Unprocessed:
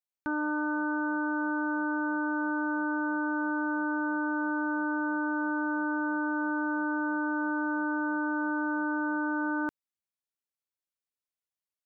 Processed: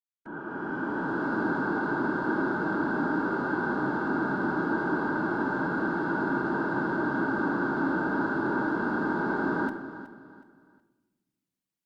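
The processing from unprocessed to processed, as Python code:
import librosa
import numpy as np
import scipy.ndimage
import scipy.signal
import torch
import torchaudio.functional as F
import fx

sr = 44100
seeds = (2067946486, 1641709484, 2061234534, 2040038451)

p1 = fx.fade_in_head(x, sr, length_s=1.25)
p2 = fx.cheby_harmonics(p1, sr, harmonics=(2, 4), levels_db=(-41, -30), full_scale_db=-23.5)
p3 = 10.0 ** (-37.5 / 20.0) * np.tanh(p2 / 10.0 ** (-37.5 / 20.0))
p4 = p2 + (p3 * 10.0 ** (-10.5 / 20.0))
p5 = fx.whisperise(p4, sr, seeds[0])
p6 = p5 + fx.echo_feedback(p5, sr, ms=369, feedback_pct=32, wet_db=-14.0, dry=0)
y = fx.room_shoebox(p6, sr, seeds[1], volume_m3=820.0, walls='mixed', distance_m=0.56)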